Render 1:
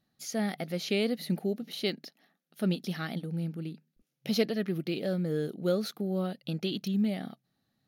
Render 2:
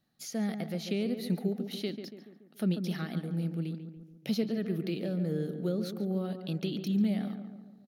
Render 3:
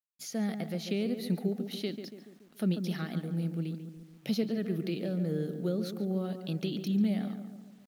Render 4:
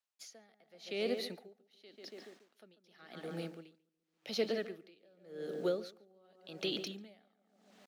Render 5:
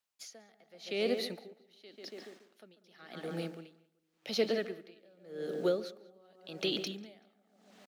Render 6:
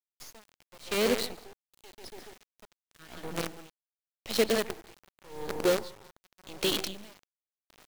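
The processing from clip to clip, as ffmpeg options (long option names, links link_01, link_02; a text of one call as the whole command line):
ffmpeg -i in.wav -filter_complex "[0:a]acrossover=split=360[link_01][link_02];[link_02]acompressor=threshold=-39dB:ratio=6[link_03];[link_01][link_03]amix=inputs=2:normalize=0,asplit=2[link_04][link_05];[link_05]adelay=142,lowpass=frequency=1700:poles=1,volume=-8dB,asplit=2[link_06][link_07];[link_07]adelay=142,lowpass=frequency=1700:poles=1,volume=0.54,asplit=2[link_08][link_09];[link_09]adelay=142,lowpass=frequency=1700:poles=1,volume=0.54,asplit=2[link_10][link_11];[link_11]adelay=142,lowpass=frequency=1700:poles=1,volume=0.54,asplit=2[link_12][link_13];[link_13]adelay=142,lowpass=frequency=1700:poles=1,volume=0.54,asplit=2[link_14][link_15];[link_15]adelay=142,lowpass=frequency=1700:poles=1,volume=0.54[link_16];[link_04][link_06][link_08][link_10][link_12][link_14][link_16]amix=inputs=7:normalize=0" out.wav
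ffmpeg -i in.wav -af "acrusher=bits=10:mix=0:aa=0.000001" out.wav
ffmpeg -i in.wav -filter_complex "[0:a]acrossover=split=380 7900:gain=0.0708 1 0.251[link_01][link_02][link_03];[link_01][link_02][link_03]amix=inputs=3:normalize=0,aeval=exprs='val(0)*pow(10,-32*(0.5-0.5*cos(2*PI*0.89*n/s))/20)':channel_layout=same,volume=6.5dB" out.wav
ffmpeg -i in.wav -filter_complex "[0:a]asplit=2[link_01][link_02];[link_02]adelay=191,lowpass=frequency=4100:poles=1,volume=-21dB,asplit=2[link_03][link_04];[link_04]adelay=191,lowpass=frequency=4100:poles=1,volume=0.31[link_05];[link_01][link_03][link_05]amix=inputs=3:normalize=0,volume=3.5dB" out.wav
ffmpeg -i in.wav -af "acrusher=bits=6:dc=4:mix=0:aa=0.000001,volume=4.5dB" out.wav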